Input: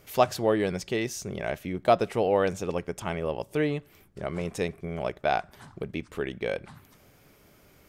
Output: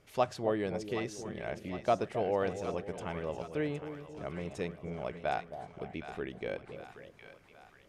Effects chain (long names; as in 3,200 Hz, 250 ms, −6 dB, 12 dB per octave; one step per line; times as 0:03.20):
low-pass filter 11,000 Hz 24 dB per octave
high-shelf EQ 5,300 Hz −6.5 dB
on a send: echo with a time of its own for lows and highs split 810 Hz, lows 267 ms, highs 765 ms, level −9.5 dB
on the sum: level −7.5 dB